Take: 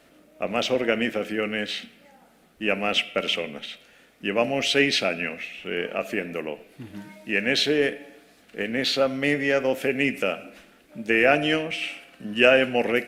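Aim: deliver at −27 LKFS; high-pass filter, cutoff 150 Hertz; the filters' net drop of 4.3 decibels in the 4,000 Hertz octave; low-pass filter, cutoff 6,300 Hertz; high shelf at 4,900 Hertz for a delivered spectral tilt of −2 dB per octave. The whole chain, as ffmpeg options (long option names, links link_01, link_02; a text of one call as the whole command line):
ffmpeg -i in.wav -af "highpass=150,lowpass=6300,equalizer=frequency=4000:width_type=o:gain=-9,highshelf=frequency=4900:gain=7.5,volume=-2dB" out.wav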